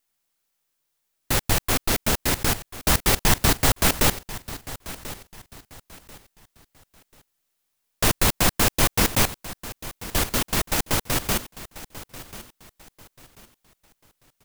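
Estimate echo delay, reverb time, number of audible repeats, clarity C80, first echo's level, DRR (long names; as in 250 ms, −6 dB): 1,039 ms, no reverb audible, 2, no reverb audible, −16.0 dB, no reverb audible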